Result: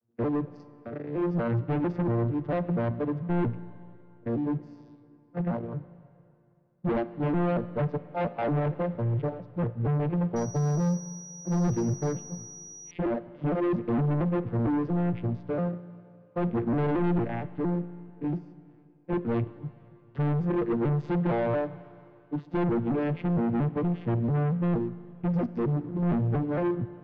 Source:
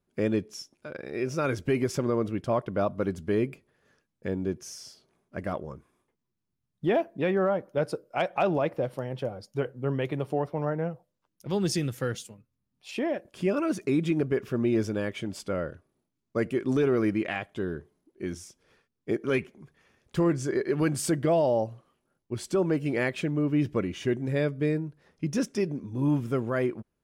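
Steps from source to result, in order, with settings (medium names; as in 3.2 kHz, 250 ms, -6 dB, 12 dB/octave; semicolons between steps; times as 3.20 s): vocoder on a broken chord major triad, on A#2, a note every 229 ms; treble shelf 2.3 kHz -8 dB; waveshaping leveller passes 1; saturation -29.5 dBFS, distortion -7 dB; distance through air 300 m; Schroeder reverb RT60 2.6 s, combs from 31 ms, DRR 15 dB; 10.36–12.91 s: class-D stage that switches slowly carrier 5.8 kHz; trim +6 dB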